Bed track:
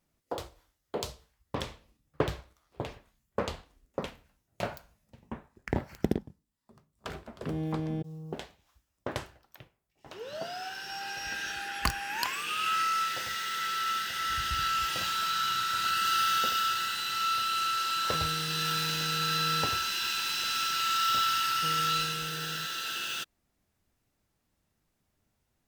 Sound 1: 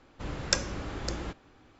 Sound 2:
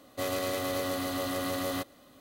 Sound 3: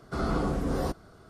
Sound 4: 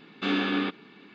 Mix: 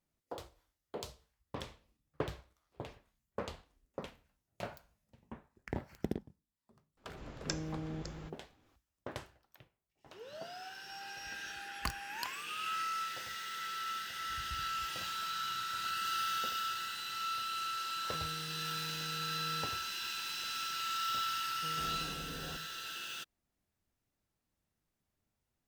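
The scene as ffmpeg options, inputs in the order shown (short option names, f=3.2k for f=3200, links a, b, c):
-filter_complex "[0:a]volume=-8.5dB[a];[3:a]acompressor=threshold=-29dB:ratio=6:attack=3.2:release=140:knee=1:detection=peak[b];[1:a]atrim=end=1.79,asetpts=PTS-STARTPTS,volume=-12.5dB,afade=t=in:d=0.004:c=hsin,afade=t=out:st=1.786:d=0.004:c=hsin,adelay=6970[c];[b]atrim=end=1.29,asetpts=PTS-STARTPTS,volume=-14.5dB,afade=t=in:d=0.004:c=hsin,afade=t=out:st=1.286:d=0.004:c=hsin,adelay=21650[d];[a][c][d]amix=inputs=3:normalize=0"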